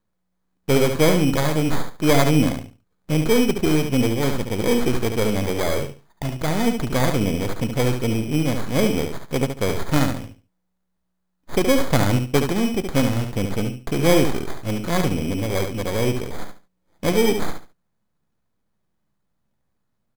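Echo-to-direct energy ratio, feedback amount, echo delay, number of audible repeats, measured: -6.5 dB, 23%, 71 ms, 3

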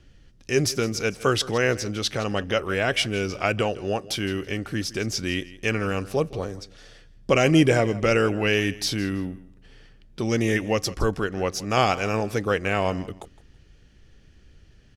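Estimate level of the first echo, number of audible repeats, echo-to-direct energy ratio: -18.5 dB, 2, -18.5 dB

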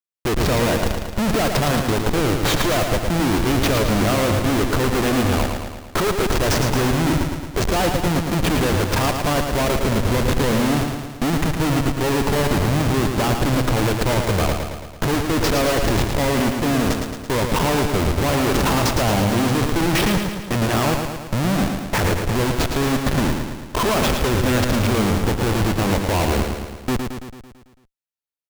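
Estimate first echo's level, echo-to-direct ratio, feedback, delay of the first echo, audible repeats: -5.5 dB, -3.5 dB, 59%, 111 ms, 7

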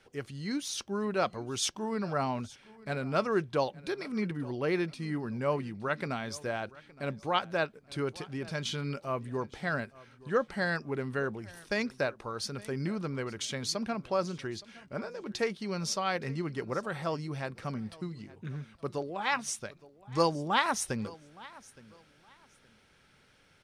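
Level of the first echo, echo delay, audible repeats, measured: -21.0 dB, 867 ms, 2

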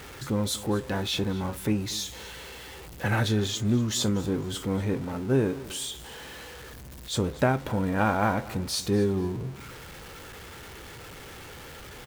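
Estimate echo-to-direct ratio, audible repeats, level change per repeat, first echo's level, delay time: -18.5 dB, 2, -11.5 dB, -19.0 dB, 240 ms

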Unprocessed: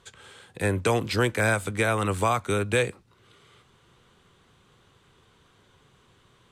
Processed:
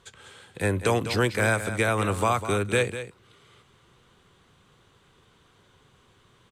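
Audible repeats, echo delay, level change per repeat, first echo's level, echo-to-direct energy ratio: 1, 200 ms, no regular repeats, -11.5 dB, -11.5 dB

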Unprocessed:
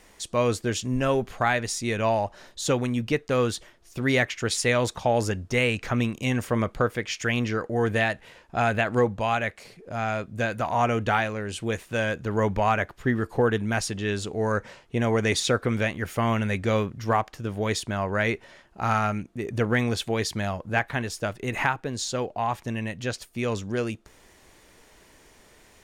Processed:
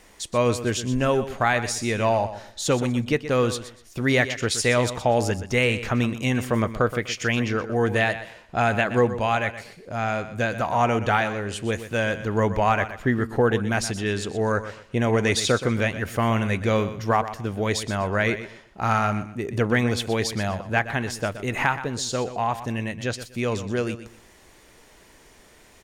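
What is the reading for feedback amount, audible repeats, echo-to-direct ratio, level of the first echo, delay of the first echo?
26%, 2, -12.0 dB, -12.5 dB, 123 ms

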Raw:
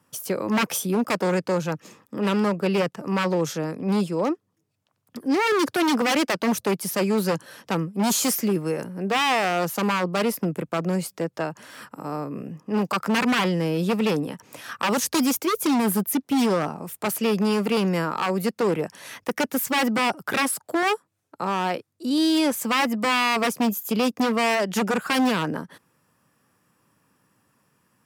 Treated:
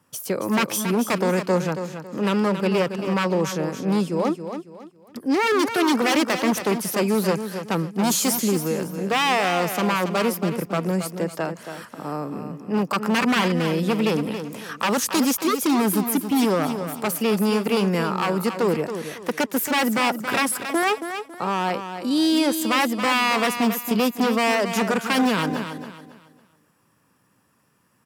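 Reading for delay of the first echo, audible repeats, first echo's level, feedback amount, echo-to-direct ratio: 276 ms, 3, -9.0 dB, 31%, -8.5 dB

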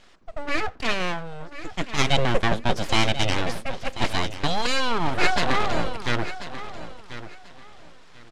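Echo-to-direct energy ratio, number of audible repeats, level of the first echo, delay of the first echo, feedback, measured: -13.0 dB, 2, -13.0 dB, 1039 ms, 23%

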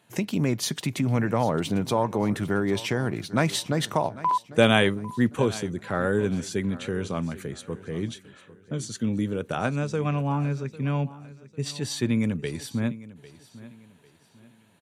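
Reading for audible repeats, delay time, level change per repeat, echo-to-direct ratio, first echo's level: 2, 799 ms, -9.5 dB, -17.5 dB, -18.0 dB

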